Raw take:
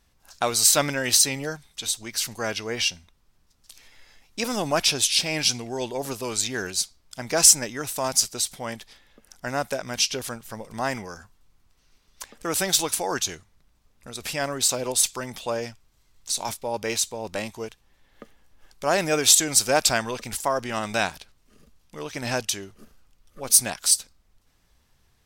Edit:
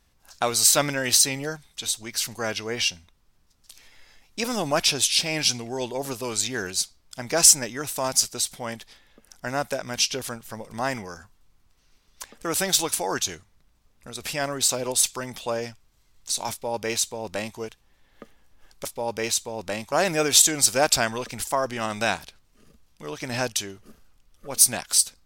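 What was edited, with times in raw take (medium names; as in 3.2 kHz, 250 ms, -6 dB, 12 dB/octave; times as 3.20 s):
16.51–17.58 s: copy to 18.85 s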